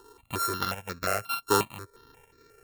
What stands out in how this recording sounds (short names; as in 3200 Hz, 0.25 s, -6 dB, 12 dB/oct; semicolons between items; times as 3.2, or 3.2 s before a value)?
a buzz of ramps at a fixed pitch in blocks of 32 samples; random-step tremolo 3.1 Hz, depth 70%; notches that jump at a steady rate 5.6 Hz 610–3000 Hz